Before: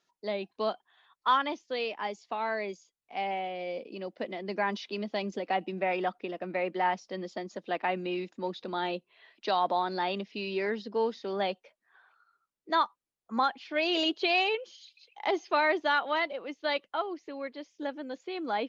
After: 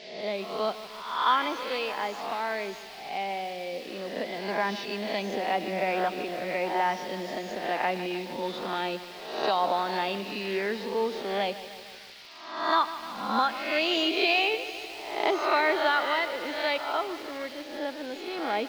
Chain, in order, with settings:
peak hold with a rise ahead of every peak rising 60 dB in 0.77 s
noise in a band 1,800–5,000 Hz −49 dBFS
feedback echo at a low word length 152 ms, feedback 80%, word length 7 bits, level −13.5 dB

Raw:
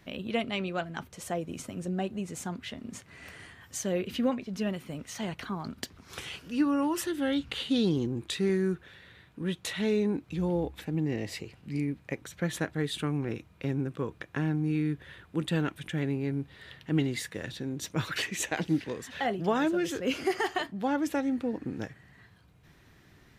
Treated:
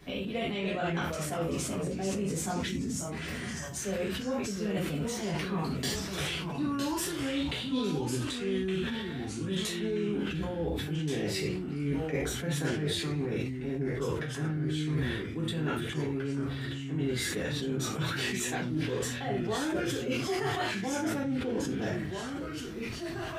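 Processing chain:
time-frequency box erased 0:02.67–0:03.12, 290–5,300 Hz
reverb whose tail is shaped and stops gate 130 ms falling, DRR −7.5 dB
reversed playback
downward compressor 12 to 1, threshold −30 dBFS, peak gain reduction 20 dB
reversed playback
delay with pitch and tempo change per echo 245 ms, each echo −2 semitones, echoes 2, each echo −6 dB
level that may fall only so fast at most 32 dB per second

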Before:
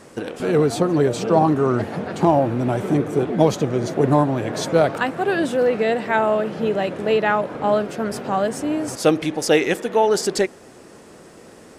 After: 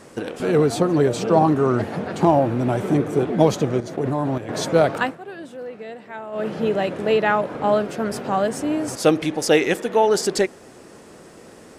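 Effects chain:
0:03.80–0:04.49: output level in coarse steps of 11 dB
0:05.04–0:06.46: duck −15.5 dB, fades 0.14 s

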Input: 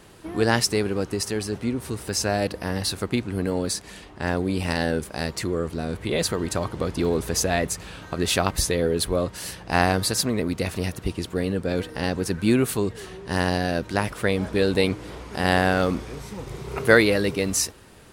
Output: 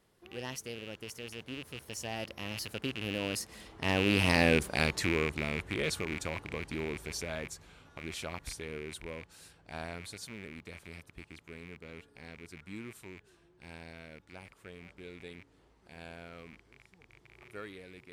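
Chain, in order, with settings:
loose part that buzzes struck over −33 dBFS, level −14 dBFS
source passing by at 0:04.49, 32 m/s, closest 16 metres
level −1.5 dB

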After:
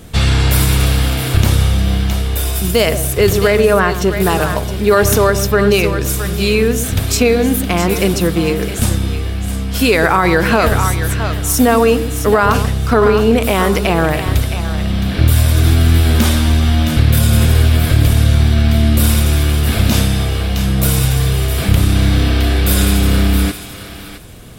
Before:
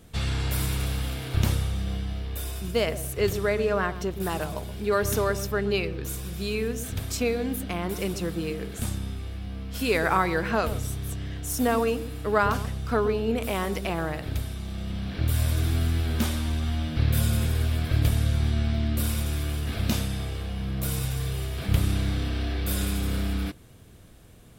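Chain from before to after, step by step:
0:02.54–0:02.95: high-shelf EQ 9,300 Hz → 5,800 Hz +11.5 dB
feedback echo with a high-pass in the loop 665 ms, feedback 16%, high-pass 700 Hz, level −9.5 dB
boost into a limiter +16 dB
level −1 dB

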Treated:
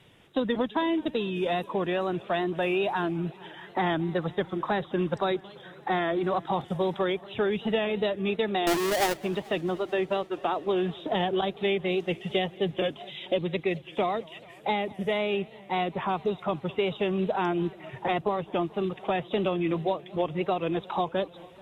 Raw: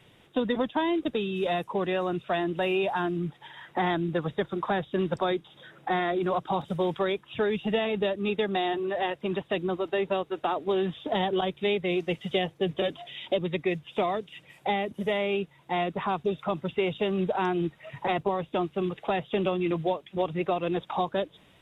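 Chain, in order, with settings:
0:08.67–0:09.18: each half-wave held at its own peak
tape wow and flutter 68 cents
feedback echo with a swinging delay time 219 ms, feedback 77%, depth 177 cents, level −23 dB

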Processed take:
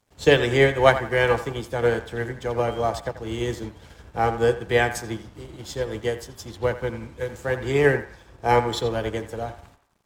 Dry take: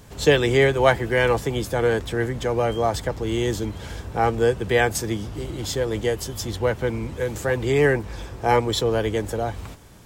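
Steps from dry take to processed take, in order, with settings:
high-shelf EQ 11,000 Hz −5.5 dB
mains-hum notches 50/100/150/200/250/300/350/400/450 Hz
dead-zone distortion −47 dBFS
on a send: feedback echo with a band-pass in the loop 85 ms, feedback 51%, band-pass 1,200 Hz, level −6.5 dB
on the sum: expander for the loud parts 1.5 to 1, over −42 dBFS
level +2 dB

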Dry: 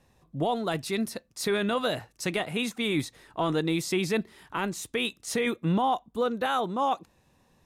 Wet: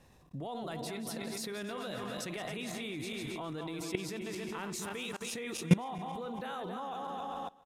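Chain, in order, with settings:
feedback delay that plays each chunk backwards 136 ms, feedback 61%, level −7 dB
single-tap delay 408 ms −15 dB
output level in coarse steps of 22 dB
level +4.5 dB

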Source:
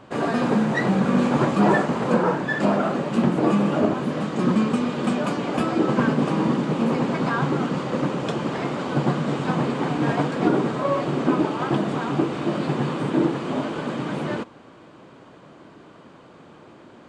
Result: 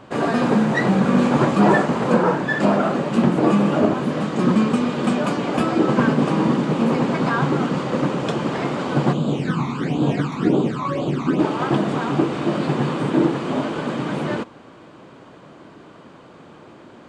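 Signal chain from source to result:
0:09.12–0:11.38: all-pass phaser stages 12, 1 Hz → 2.9 Hz, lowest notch 500–1,900 Hz
level +3 dB

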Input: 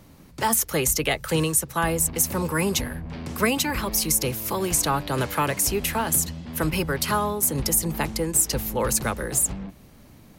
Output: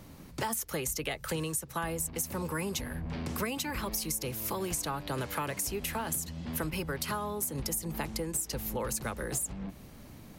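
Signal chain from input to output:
downward compressor 5 to 1, threshold −32 dBFS, peak gain reduction 14.5 dB

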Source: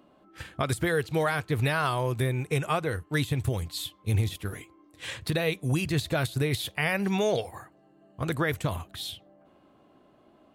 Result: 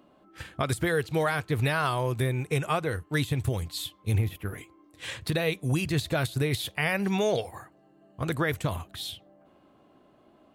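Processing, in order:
0:04.18–0:04.58: flat-topped bell 5,600 Hz −11.5 dB

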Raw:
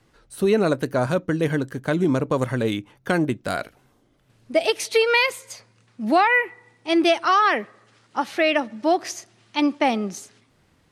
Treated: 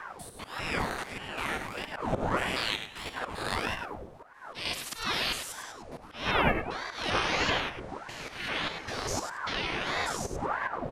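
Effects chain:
spectrum averaged block by block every 200 ms
wind on the microphone 88 Hz −21 dBFS
gate on every frequency bin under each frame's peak −15 dB weak
0:02.44–0:04.72: dynamic equaliser 4,100 Hz, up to +5 dB, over −45 dBFS, Q 0.71
volume swells 255 ms
single-tap delay 103 ms −8.5 dB
convolution reverb RT60 0.20 s, pre-delay 44 ms, DRR 13.5 dB
ring modulator whose carrier an LFO sweeps 760 Hz, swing 80%, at 1.6 Hz
level +6 dB

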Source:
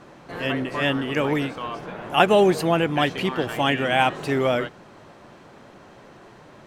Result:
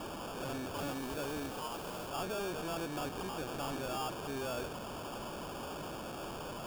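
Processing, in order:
linear delta modulator 32 kbit/s, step −27.5 dBFS
tube saturation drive 30 dB, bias 0.55
low-shelf EQ 170 Hz −9.5 dB
decimation without filtering 22×
0:00.75–0:02.08: background noise white −51 dBFS
level −5 dB

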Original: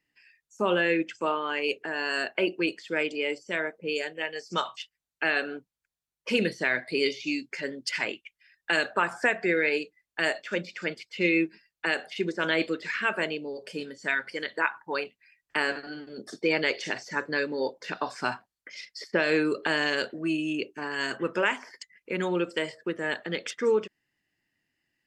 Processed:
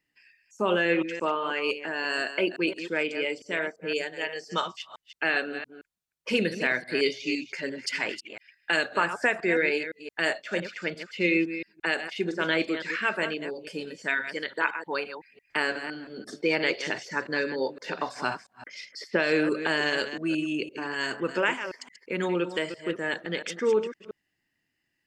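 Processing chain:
delay that plays each chunk backwards 171 ms, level −10 dB

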